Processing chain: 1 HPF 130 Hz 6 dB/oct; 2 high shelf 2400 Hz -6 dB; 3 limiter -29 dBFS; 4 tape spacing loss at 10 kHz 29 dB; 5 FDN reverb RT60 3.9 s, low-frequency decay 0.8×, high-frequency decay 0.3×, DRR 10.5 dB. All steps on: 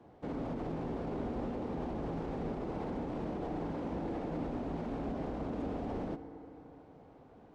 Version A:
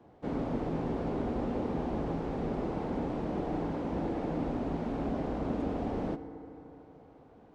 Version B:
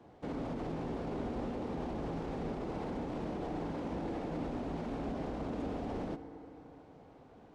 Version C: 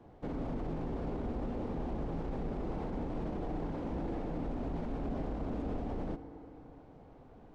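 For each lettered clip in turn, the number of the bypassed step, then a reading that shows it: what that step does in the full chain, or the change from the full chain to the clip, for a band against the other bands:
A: 3, mean gain reduction 3.0 dB; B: 2, 4 kHz band +4.0 dB; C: 1, 125 Hz band +3.5 dB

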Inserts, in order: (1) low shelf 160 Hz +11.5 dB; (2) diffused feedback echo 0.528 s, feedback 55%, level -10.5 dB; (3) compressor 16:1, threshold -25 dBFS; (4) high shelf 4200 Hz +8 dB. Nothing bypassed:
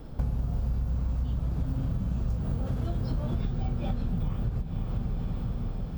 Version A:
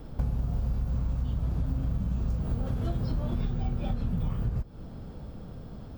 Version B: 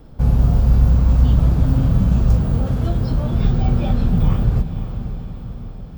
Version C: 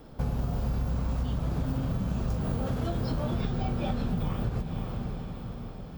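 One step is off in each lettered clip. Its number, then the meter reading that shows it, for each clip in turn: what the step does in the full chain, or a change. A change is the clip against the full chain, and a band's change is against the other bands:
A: 2, momentary loudness spread change +10 LU; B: 3, mean gain reduction 11.0 dB; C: 1, 125 Hz band -7.0 dB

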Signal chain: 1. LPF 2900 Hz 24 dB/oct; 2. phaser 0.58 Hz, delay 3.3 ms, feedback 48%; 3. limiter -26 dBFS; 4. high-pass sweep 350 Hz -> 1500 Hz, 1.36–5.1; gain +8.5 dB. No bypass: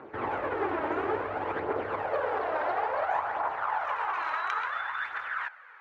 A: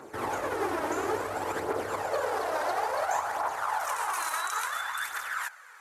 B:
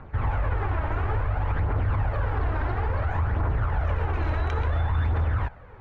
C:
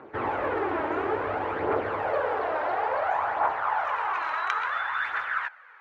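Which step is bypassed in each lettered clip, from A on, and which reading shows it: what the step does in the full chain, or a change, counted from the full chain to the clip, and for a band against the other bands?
1, 4 kHz band +7.0 dB; 4, 125 Hz band +30.0 dB; 3, mean gain reduction 3.0 dB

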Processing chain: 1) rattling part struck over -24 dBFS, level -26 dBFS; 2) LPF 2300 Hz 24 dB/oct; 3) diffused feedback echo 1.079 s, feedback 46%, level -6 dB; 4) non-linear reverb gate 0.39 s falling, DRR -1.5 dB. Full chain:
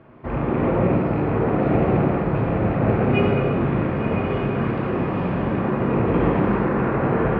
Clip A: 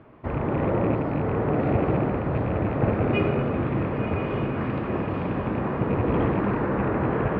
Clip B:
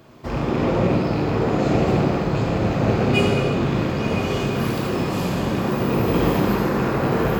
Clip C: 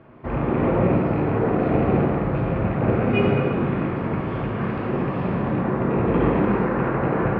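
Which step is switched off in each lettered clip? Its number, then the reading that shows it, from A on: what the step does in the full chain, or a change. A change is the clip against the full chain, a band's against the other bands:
4, echo-to-direct 3.5 dB to -5.0 dB; 2, 2 kHz band +2.0 dB; 3, echo-to-direct 3.5 dB to 1.5 dB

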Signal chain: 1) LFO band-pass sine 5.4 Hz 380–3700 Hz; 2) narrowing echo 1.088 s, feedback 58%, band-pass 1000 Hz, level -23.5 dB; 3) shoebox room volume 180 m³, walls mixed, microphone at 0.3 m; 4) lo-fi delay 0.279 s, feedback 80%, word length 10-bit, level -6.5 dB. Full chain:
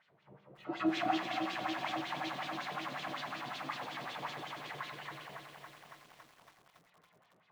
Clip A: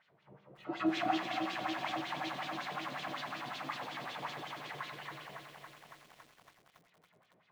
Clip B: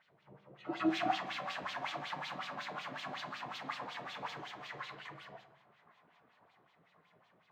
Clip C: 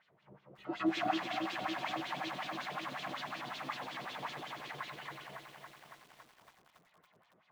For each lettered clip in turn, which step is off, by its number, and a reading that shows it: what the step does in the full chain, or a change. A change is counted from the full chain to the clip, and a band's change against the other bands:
2, momentary loudness spread change -1 LU; 4, momentary loudness spread change -4 LU; 3, momentary loudness spread change -2 LU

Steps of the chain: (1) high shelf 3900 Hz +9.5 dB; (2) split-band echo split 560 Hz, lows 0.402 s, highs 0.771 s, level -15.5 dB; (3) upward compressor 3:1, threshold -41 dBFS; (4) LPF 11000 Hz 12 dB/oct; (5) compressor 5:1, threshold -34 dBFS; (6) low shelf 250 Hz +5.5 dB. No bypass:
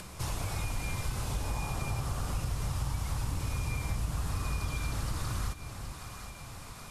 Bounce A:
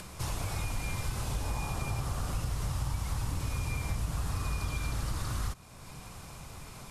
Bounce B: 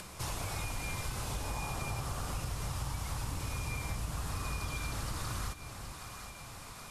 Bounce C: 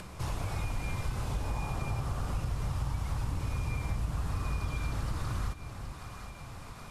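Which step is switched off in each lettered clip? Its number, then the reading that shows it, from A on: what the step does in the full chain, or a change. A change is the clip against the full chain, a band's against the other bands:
2, momentary loudness spread change +3 LU; 6, 125 Hz band -4.5 dB; 1, 8 kHz band -7.5 dB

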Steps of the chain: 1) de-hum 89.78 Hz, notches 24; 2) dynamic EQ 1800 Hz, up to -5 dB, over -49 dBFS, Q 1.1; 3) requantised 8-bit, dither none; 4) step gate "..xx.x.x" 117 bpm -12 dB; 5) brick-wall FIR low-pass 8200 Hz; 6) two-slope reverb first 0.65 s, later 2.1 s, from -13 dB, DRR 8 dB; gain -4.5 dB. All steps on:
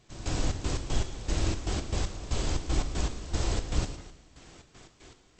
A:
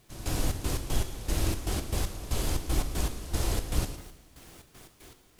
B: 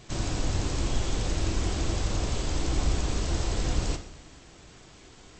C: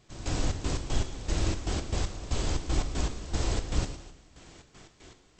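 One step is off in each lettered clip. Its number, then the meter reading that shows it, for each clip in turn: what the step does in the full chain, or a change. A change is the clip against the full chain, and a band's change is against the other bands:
5, 8 kHz band +2.5 dB; 4, crest factor change -2.5 dB; 1, momentary loudness spread change +6 LU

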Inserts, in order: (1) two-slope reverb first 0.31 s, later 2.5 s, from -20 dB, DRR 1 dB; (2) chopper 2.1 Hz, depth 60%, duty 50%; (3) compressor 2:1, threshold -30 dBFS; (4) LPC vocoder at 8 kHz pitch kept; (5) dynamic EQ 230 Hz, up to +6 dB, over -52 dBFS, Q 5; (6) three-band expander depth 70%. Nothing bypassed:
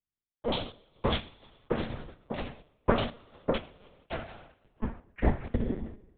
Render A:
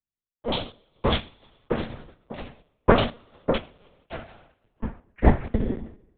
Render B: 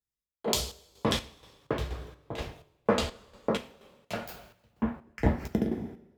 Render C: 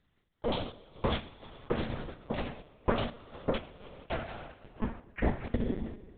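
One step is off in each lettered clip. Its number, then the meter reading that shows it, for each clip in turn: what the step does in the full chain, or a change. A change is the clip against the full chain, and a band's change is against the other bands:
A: 3, momentary loudness spread change +5 LU; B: 4, 4 kHz band +2.5 dB; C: 6, 4 kHz band -2.0 dB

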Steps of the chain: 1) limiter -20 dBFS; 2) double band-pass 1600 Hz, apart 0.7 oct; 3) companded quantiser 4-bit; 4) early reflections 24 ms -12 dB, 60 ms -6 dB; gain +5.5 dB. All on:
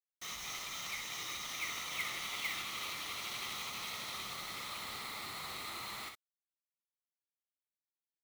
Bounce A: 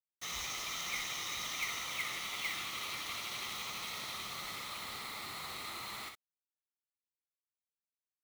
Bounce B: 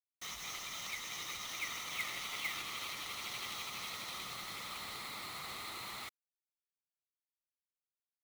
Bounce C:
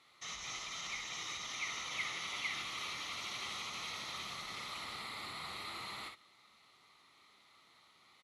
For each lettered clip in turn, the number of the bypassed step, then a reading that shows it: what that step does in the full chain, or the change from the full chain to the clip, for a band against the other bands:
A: 1, loudness change +1.0 LU; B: 4, echo-to-direct -5.0 dB to none; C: 3, distortion -8 dB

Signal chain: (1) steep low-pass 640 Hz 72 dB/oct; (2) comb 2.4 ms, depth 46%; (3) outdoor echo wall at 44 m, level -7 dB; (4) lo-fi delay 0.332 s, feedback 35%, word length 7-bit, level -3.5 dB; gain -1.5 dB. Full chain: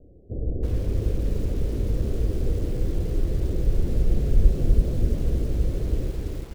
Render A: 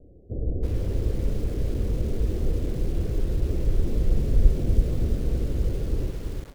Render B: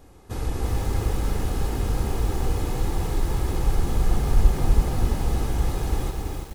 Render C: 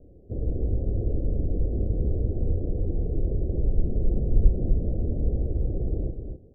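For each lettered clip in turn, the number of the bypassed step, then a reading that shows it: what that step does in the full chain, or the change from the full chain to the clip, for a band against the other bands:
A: 3, loudness change -1.0 LU; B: 1, 1 kHz band +16.0 dB; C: 4, loudness change -1.5 LU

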